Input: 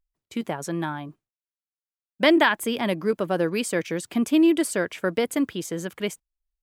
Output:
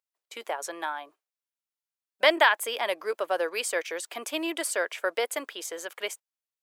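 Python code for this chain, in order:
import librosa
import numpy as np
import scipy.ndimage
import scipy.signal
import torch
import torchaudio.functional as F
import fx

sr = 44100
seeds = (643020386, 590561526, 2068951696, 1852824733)

y = scipy.signal.sosfilt(scipy.signal.butter(4, 510.0, 'highpass', fs=sr, output='sos'), x)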